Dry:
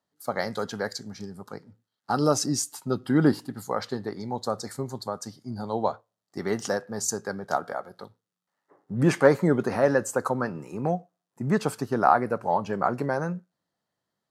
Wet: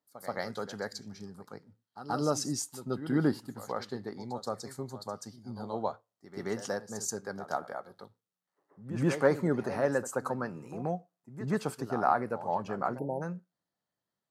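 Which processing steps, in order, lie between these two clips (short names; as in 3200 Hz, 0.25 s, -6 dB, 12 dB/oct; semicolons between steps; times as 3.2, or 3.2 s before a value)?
reverse echo 0.13 s -12.5 dB; spectral delete 12.99–13.22, 950–9800 Hz; gain -7 dB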